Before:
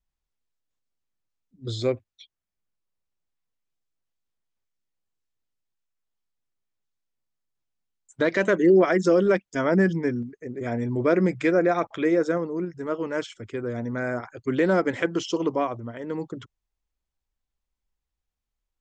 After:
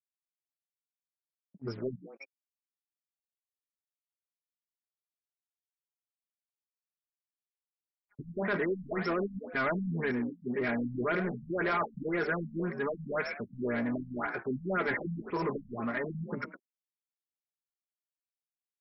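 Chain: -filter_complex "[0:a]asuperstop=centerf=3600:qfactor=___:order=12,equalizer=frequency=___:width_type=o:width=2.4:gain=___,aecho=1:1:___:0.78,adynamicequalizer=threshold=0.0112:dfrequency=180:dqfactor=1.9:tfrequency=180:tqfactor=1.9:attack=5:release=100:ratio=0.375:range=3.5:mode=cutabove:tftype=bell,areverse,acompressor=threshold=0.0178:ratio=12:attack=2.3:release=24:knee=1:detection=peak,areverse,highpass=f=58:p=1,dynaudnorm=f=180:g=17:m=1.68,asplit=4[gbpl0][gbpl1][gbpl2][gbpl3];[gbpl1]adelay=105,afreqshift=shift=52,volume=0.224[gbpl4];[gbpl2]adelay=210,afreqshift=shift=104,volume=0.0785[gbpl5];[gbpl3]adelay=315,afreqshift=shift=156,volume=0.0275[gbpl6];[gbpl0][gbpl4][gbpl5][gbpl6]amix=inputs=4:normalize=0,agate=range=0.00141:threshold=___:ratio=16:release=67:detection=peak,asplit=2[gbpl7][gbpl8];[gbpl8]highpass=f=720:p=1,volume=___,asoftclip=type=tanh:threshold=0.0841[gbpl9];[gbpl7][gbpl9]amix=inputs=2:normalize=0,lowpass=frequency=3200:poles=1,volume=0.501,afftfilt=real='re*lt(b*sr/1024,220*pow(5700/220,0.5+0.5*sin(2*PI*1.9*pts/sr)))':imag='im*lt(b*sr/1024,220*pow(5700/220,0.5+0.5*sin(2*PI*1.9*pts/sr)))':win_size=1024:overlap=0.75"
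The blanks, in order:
1.2, 530, -11.5, 4.9, 0.00126, 7.08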